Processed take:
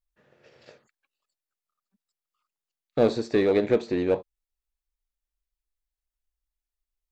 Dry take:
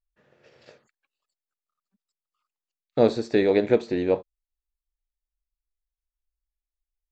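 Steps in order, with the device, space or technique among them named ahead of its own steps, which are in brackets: parallel distortion (in parallel at -4.5 dB: hard clip -20.5 dBFS, distortion -6 dB); on the sum: gain -4 dB

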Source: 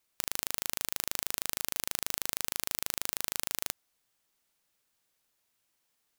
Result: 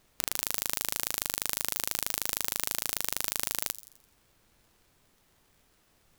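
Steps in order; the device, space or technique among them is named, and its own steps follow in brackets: thin delay 85 ms, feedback 45%, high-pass 5400 Hz, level -12 dB; warped LP (record warp 33 1/3 rpm, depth 100 cents; crackle; pink noise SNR 32 dB); gain +2.5 dB

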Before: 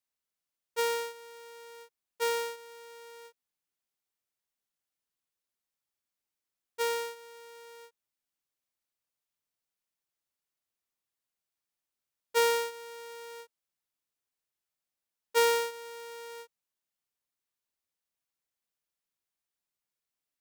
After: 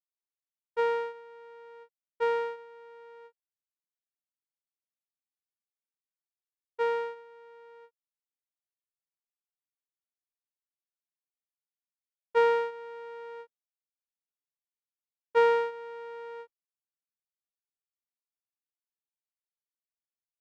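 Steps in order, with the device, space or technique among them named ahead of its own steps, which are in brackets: hearing-loss simulation (LPF 1600 Hz 12 dB/oct; expander -47 dBFS); gain +3.5 dB

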